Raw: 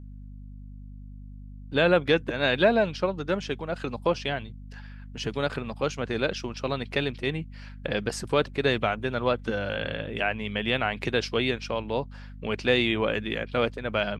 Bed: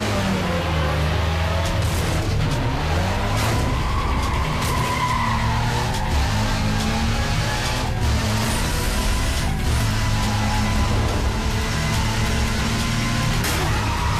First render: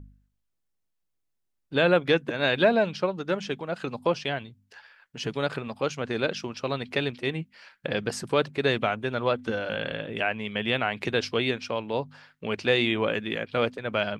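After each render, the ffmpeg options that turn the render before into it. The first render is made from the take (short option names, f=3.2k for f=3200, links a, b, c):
-af "bandreject=f=50:t=h:w=4,bandreject=f=100:t=h:w=4,bandreject=f=150:t=h:w=4,bandreject=f=200:t=h:w=4,bandreject=f=250:t=h:w=4"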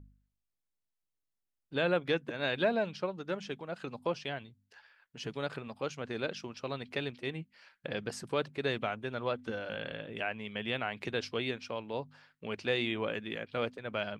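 -af "volume=-8.5dB"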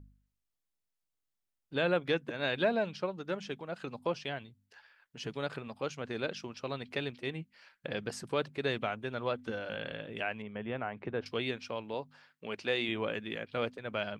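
-filter_complex "[0:a]asettb=1/sr,asplit=3[a][b][c];[a]atrim=end=10.424[d];[b]atrim=start=10.42:end=11.26,asetpts=PTS-STARTPTS,afade=t=in:d=0.004:c=qsin,afade=t=out:st=0.836:d=0.004:c=qsin,lowpass=1.4k[e];[c]atrim=start=11.256[f];[d][e]acrossfade=d=0.004:c1=hsin:c2=qsin[g];[g][f]acrossfade=d=0.004:c1=qsin:c2=hsin,asettb=1/sr,asplit=3[h][i][j];[h]atrim=end=11.944[k];[i]atrim=start=11.94:end=12.89,asetpts=PTS-STARTPTS,afade=t=in:d=0.004:c=qsin,afade=t=out:st=0.946:d=0.004:c=qsin,highpass=f=220:p=1[l];[j]atrim=start=12.886[m];[k][l]acrossfade=d=0.004:c1=hsin:c2=qsin[n];[n][m]acrossfade=d=0.004:c1=qsin:c2=hsin"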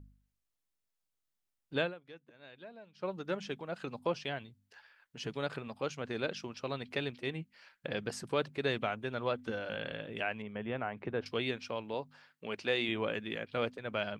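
-filter_complex "[0:a]asplit=3[a][b][c];[a]atrim=end=1.97,asetpts=PTS-STARTPTS,afade=t=out:st=1.81:d=0.16:c=qua:silence=0.0841395[d];[b]atrim=start=1.97:end=2.92,asetpts=PTS-STARTPTS,volume=-21.5dB[e];[c]atrim=start=2.92,asetpts=PTS-STARTPTS,afade=t=in:d=0.16:c=qua:silence=0.0841395[f];[d][e][f]concat=n=3:v=0:a=1"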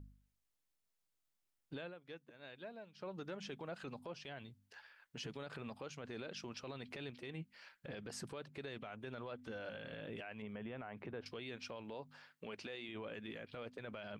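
-af "acompressor=threshold=-38dB:ratio=10,alimiter=level_in=12.5dB:limit=-24dB:level=0:latency=1:release=17,volume=-12.5dB"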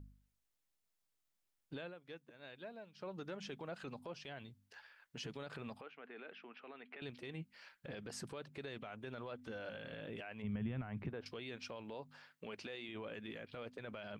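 -filter_complex "[0:a]asettb=1/sr,asplit=3[a][b][c];[a]atrim=end=5.814[d];[b]atrim=start=5.81:end=7.02,asetpts=PTS-STARTPTS,afade=t=in:d=0.004:c=qsin,afade=t=out:st=1.206:d=0.004:c=qsin,highpass=f=290:w=0.5412,highpass=f=290:w=1.3066,equalizer=f=340:t=q:w=4:g=-8,equalizer=f=550:t=q:w=4:g=-9,equalizer=f=990:t=q:w=4:g=-5,lowpass=f=2.6k:w=0.5412,lowpass=f=2.6k:w=1.3066[e];[c]atrim=start=7.016[f];[d][e]acrossfade=d=0.004:c1=hsin:c2=qsin[g];[g][f]acrossfade=d=0.004:c1=qsin:c2=hsin,asplit=3[h][i][j];[h]afade=t=out:st=10.43:d=0.02[k];[i]asubboost=boost=6:cutoff=190,afade=t=in:st=10.43:d=0.02,afade=t=out:st=11.08:d=0.02[l];[j]afade=t=in:st=11.08:d=0.02[m];[k][l][m]amix=inputs=3:normalize=0"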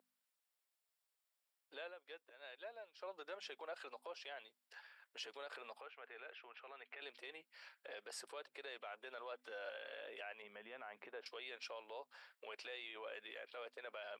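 -af "highpass=f=490:w=0.5412,highpass=f=490:w=1.3066,bandreject=f=6.3k:w=7.9"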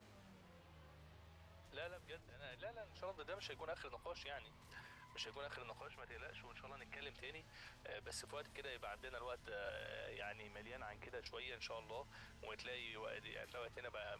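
-filter_complex "[1:a]volume=-42dB[a];[0:a][a]amix=inputs=2:normalize=0"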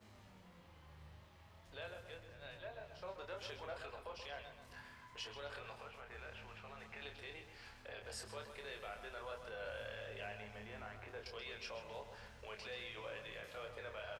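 -filter_complex "[0:a]asplit=2[a][b];[b]adelay=28,volume=-5dB[c];[a][c]amix=inputs=2:normalize=0,asplit=2[d][e];[e]adelay=131,lowpass=f=3.5k:p=1,volume=-8dB,asplit=2[f][g];[g]adelay=131,lowpass=f=3.5k:p=1,volume=0.51,asplit=2[h][i];[i]adelay=131,lowpass=f=3.5k:p=1,volume=0.51,asplit=2[j][k];[k]adelay=131,lowpass=f=3.5k:p=1,volume=0.51,asplit=2[l][m];[m]adelay=131,lowpass=f=3.5k:p=1,volume=0.51,asplit=2[n][o];[o]adelay=131,lowpass=f=3.5k:p=1,volume=0.51[p];[d][f][h][j][l][n][p]amix=inputs=7:normalize=0"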